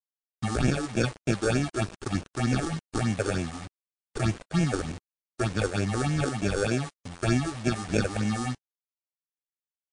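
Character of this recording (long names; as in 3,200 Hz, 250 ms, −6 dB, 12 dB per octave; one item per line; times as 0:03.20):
aliases and images of a low sample rate 1,000 Hz, jitter 0%
phaser sweep stages 6, 3.3 Hz, lowest notch 160–1,200 Hz
a quantiser's noise floor 8 bits, dither none
MP3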